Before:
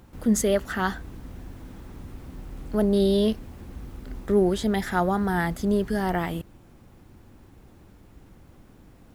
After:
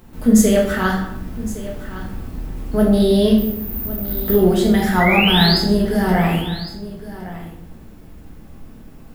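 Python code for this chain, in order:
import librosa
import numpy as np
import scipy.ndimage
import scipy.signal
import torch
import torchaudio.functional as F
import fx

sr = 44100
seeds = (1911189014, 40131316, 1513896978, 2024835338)

y = fx.high_shelf(x, sr, hz=12000.0, db=8.0)
y = fx.resample_bad(y, sr, factor=3, down='filtered', up='zero_stuff', at=(3.38, 4.31))
y = fx.spec_paint(y, sr, seeds[0], shape='rise', start_s=5.0, length_s=0.58, low_hz=1900.0, high_hz=5200.0, level_db=-25.0)
y = y + 10.0 ** (-15.5 / 20.0) * np.pad(y, (int(1112 * sr / 1000.0), 0))[:len(y)]
y = fx.room_shoebox(y, sr, seeds[1], volume_m3=230.0, walls='mixed', distance_m=1.5)
y = F.gain(torch.from_numpy(y), 2.5).numpy()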